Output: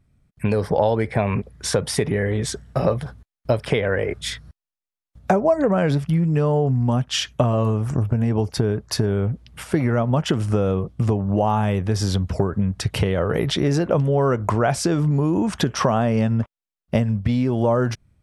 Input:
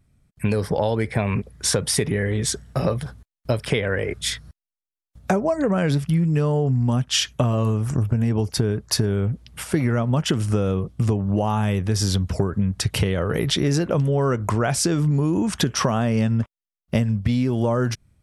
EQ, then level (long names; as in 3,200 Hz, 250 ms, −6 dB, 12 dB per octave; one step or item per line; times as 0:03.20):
high-shelf EQ 5,100 Hz −7.5 dB
dynamic equaliser 710 Hz, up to +5 dB, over −36 dBFS, Q 1
0.0 dB